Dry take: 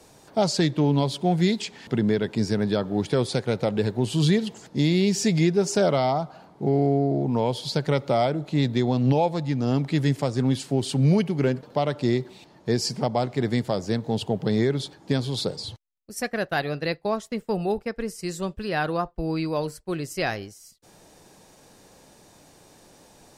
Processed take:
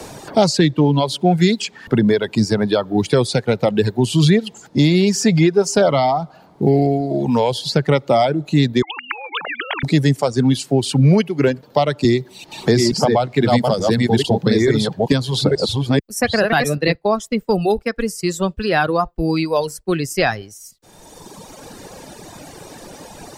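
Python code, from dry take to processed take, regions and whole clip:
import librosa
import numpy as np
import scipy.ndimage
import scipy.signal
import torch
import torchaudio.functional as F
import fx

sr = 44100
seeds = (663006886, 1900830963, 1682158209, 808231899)

y = fx.chain(x, sr, fx.sine_speech(),
    fx.highpass(hz=1500.0, slope=12),
    fx.spectral_comp(ratio=10.0), at=(8.82, 9.83))
y = fx.chain(y, sr, fx.reverse_delay(ms=439, wet_db=-1.0),
    fx.band_squash(depth_pct=40), at=(12.04, 16.95))
y = fx.dereverb_blind(y, sr, rt60_s=2.0)
y = fx.band_squash(y, sr, depth_pct=40)
y = y * 10.0 ** (9.0 / 20.0)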